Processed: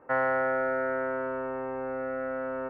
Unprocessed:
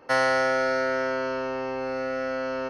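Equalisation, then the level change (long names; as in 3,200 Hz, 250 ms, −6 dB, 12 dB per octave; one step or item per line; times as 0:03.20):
low-pass filter 1,800 Hz 24 dB per octave
−3.5 dB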